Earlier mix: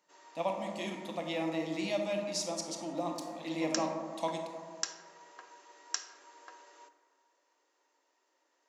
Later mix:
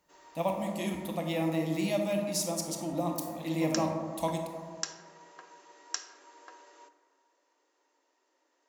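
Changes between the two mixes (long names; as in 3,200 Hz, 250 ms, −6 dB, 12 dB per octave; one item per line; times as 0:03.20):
speech: remove Chebyshev band-pass filter 220–5,400 Hz, order 2
master: add low-shelf EQ 330 Hz +8 dB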